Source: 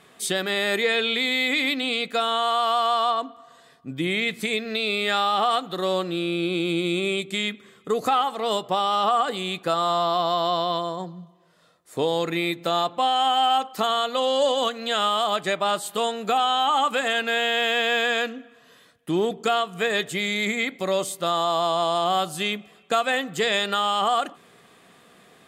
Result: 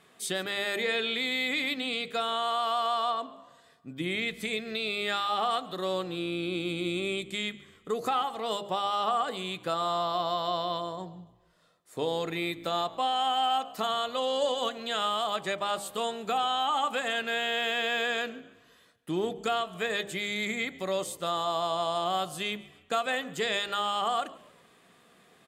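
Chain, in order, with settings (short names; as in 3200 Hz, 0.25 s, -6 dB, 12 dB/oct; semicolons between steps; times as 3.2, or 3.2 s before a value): de-hum 67.31 Hz, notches 13; frequency-shifting echo 0.14 s, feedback 38%, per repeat -60 Hz, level -21 dB; gain -6.5 dB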